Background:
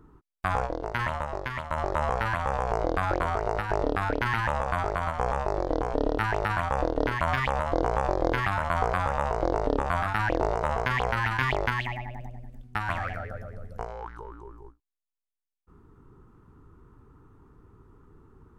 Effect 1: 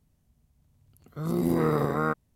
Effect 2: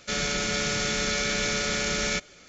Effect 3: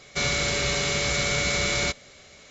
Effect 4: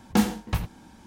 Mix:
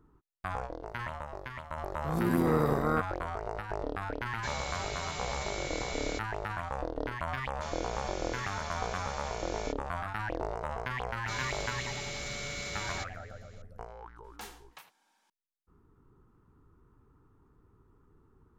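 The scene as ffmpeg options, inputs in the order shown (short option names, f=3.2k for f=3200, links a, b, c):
-filter_complex "[3:a]asplit=2[a][b];[0:a]volume=-9dB[c];[b]asoftclip=type=tanh:threshold=-14.5dB[d];[4:a]highpass=830[e];[1:a]atrim=end=2.35,asetpts=PTS-STARTPTS,volume=-2.5dB,afade=t=in:d=0.004:c=hsin,afade=t=out:st=2.346:d=0.004:c=hsin,adelay=880[f];[a]atrim=end=2.5,asetpts=PTS-STARTPTS,volume=-14.5dB,afade=t=in:d=0.004:c=hsin,afade=t=out:st=2.496:d=0.004:c=hsin,adelay=4270[g];[2:a]atrim=end=2.48,asetpts=PTS-STARTPTS,volume=-17dB,afade=t=in:d=0.004:c=hsin,afade=t=out:st=2.476:d=0.004:c=hsin,adelay=7530[h];[d]atrim=end=2.5,asetpts=PTS-STARTPTS,volume=-13dB,afade=t=in:d=0.004:c=hsin,afade=t=out:st=2.496:d=0.004:c=hsin,adelay=11120[i];[e]atrim=end=1.06,asetpts=PTS-STARTPTS,volume=-15dB,afade=t=in:d=0.004:c=hsin,afade=t=out:st=1.056:d=0.004:c=hsin,adelay=14240[j];[c][f][g][h][i][j]amix=inputs=6:normalize=0"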